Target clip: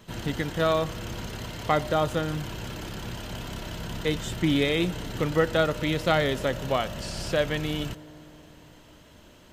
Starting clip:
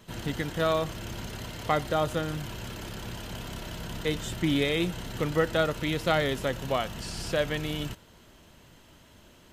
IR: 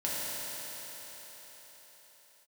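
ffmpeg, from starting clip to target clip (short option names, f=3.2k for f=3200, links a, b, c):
-filter_complex "[0:a]equalizer=f=11k:t=o:w=0.63:g=-4,asplit=2[a][b];[1:a]atrim=start_sample=2205,lowpass=1.5k[c];[b][c]afir=irnorm=-1:irlink=0,volume=-25dB[d];[a][d]amix=inputs=2:normalize=0,volume=2dB"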